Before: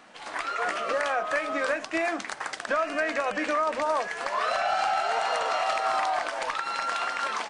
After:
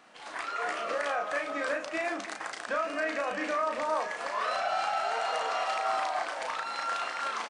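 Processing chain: bass shelf 76 Hz -8.5 dB; doubling 35 ms -4.5 dB; echo whose repeats swap between lows and highs 156 ms, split 1.2 kHz, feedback 62%, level -11.5 dB; trim -5.5 dB

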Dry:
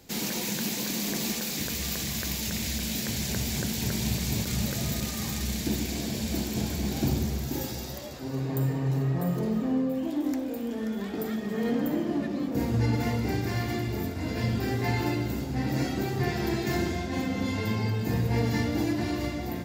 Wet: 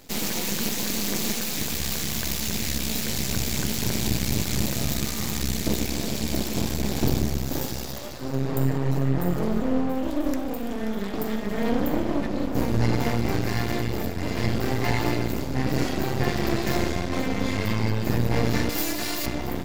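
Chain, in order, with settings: 18.69–19.26 s: RIAA curve recording; half-wave rectifier; trim +7.5 dB

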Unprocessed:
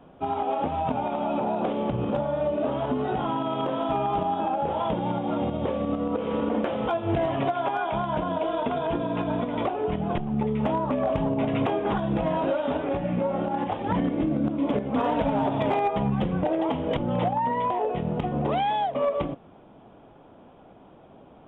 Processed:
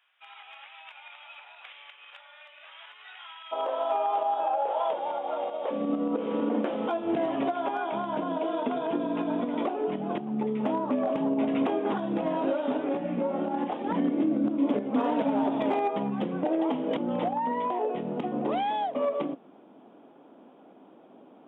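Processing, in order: ladder high-pass 1.7 kHz, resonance 40%, from 3.51 s 490 Hz, from 5.70 s 210 Hz; trim +4 dB

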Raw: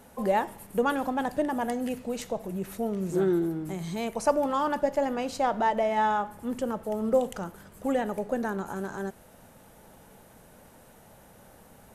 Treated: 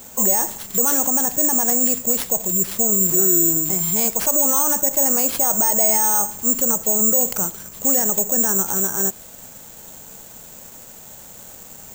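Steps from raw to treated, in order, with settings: peak limiter -23 dBFS, peak gain reduction 10.5 dB; careless resampling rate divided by 6×, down none, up zero stuff; trim +5.5 dB

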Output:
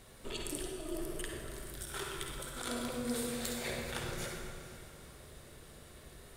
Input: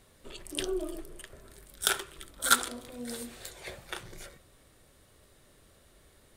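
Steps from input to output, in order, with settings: compressor with a negative ratio -41 dBFS, ratio -1; echo that smears into a reverb 456 ms, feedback 42%, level -14.5 dB; reverberation RT60 2.1 s, pre-delay 49 ms, DRR 0 dB; trim -2 dB

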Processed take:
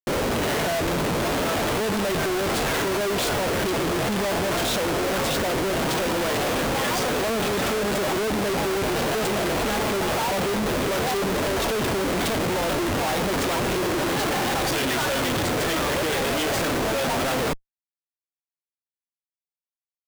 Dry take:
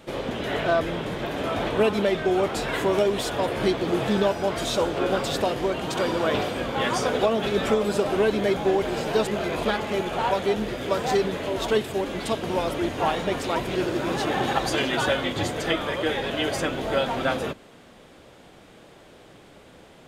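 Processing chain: Schmitt trigger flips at -37.5 dBFS; trim +1.5 dB

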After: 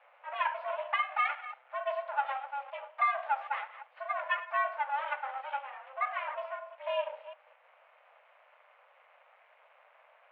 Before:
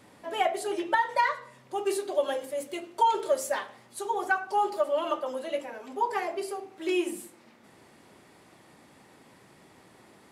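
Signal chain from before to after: chunks repeated in reverse 193 ms, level -14 dB; half-wave rectifier; mistuned SSB +270 Hz 290–2600 Hz

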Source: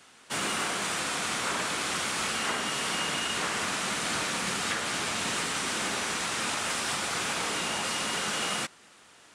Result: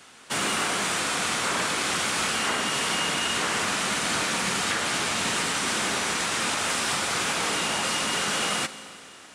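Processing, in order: in parallel at -1.5 dB: peak limiter -24 dBFS, peak gain reduction 7 dB; on the sum: Schroeder reverb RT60 3.1 s, combs from 33 ms, DRR 13.5 dB

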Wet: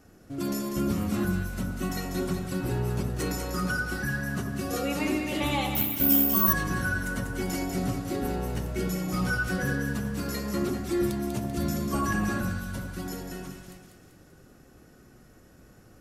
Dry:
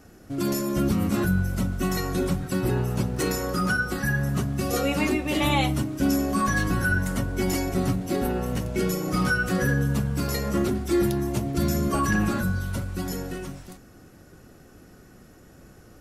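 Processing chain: on a send: two-band feedback delay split 1.4 kHz, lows 82 ms, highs 194 ms, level -5.5 dB; 5.75–6.53 s: on the sum: careless resampling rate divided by 3×, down none, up zero stuff; trim -5.5 dB

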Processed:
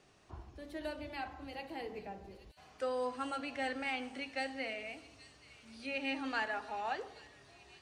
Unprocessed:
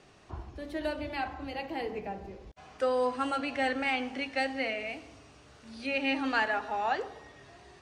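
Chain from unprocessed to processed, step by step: treble shelf 5.7 kHz +5.5 dB; on a send: feedback echo behind a high-pass 825 ms, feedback 62%, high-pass 4.1 kHz, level -10 dB; on the sum: trim -8 dB

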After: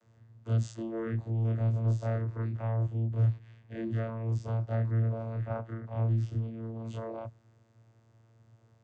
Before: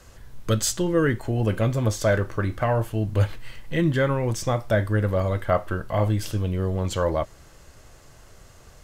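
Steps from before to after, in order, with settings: every event in the spectrogram widened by 60 ms; vocoder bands 16, saw 113 Hz; trim -9 dB

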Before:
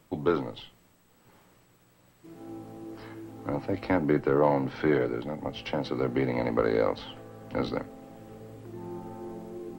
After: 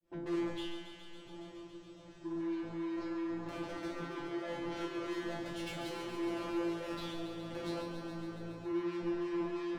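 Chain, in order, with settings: fade-in on the opening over 0.63 s; steep low-pass 6.9 kHz; bass shelf 110 Hz +9.5 dB; band-stop 2.1 kHz, Q 6.2; de-hum 147.6 Hz, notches 2; compressor with a negative ratio -30 dBFS, ratio -1; small resonant body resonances 350/590/2100 Hz, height 14 dB, ringing for 45 ms; saturation -37 dBFS, distortion -3 dB; feedback comb 170 Hz, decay 0.42 s, harmonics all, mix 100%; thinning echo 139 ms, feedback 82%, high-pass 620 Hz, level -7.5 dB; trim +11.5 dB

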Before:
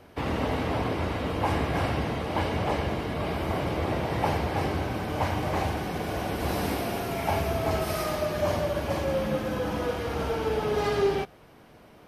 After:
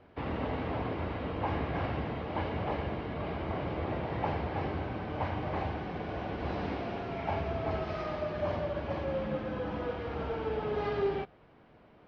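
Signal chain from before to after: Bessel low-pass 2.8 kHz, order 6; trim -6 dB

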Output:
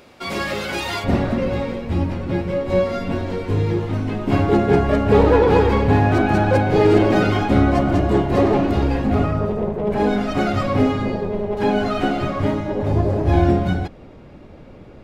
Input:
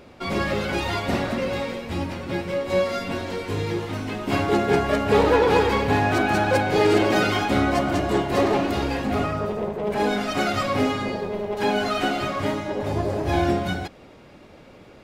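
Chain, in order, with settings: tilt EQ +1.5 dB/octave, from 1.03 s -2.5 dB/octave; trim +1 dB

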